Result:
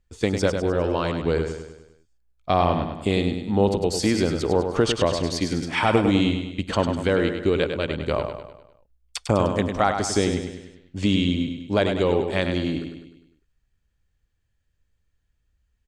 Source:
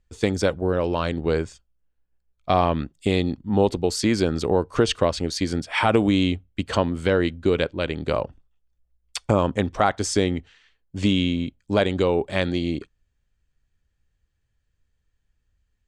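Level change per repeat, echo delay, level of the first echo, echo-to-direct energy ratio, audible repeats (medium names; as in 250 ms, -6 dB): -6.0 dB, 101 ms, -7.0 dB, -5.5 dB, 5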